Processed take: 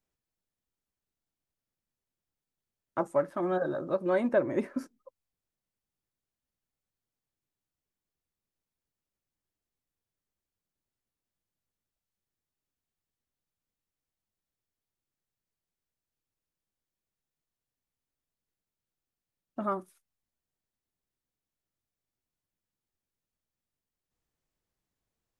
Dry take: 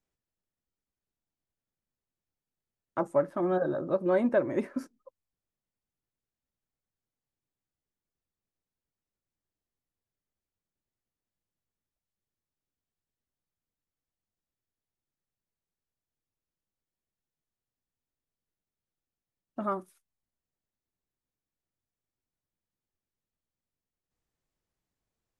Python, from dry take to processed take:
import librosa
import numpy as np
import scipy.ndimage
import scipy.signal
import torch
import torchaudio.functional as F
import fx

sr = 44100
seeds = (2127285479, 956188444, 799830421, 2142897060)

y = fx.tilt_shelf(x, sr, db=-3.0, hz=970.0, at=(3.01, 4.33))